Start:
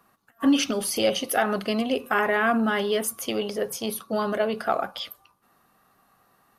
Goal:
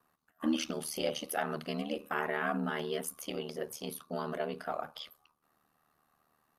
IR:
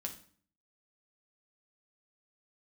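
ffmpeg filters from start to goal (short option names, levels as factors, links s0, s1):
-af "aeval=exprs='val(0)*sin(2*PI*38*n/s)':c=same,volume=0.398"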